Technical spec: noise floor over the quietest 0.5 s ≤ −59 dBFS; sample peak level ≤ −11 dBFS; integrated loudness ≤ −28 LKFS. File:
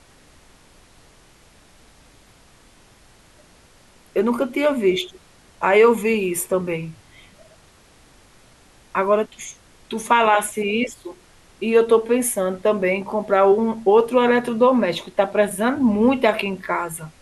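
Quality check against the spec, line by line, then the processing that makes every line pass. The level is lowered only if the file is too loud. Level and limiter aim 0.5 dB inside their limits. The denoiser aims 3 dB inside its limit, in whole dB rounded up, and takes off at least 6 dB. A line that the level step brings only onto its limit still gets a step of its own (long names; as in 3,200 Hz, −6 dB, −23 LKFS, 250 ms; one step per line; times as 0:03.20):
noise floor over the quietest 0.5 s −52 dBFS: out of spec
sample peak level −5.0 dBFS: out of spec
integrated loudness −19.5 LKFS: out of spec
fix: level −9 dB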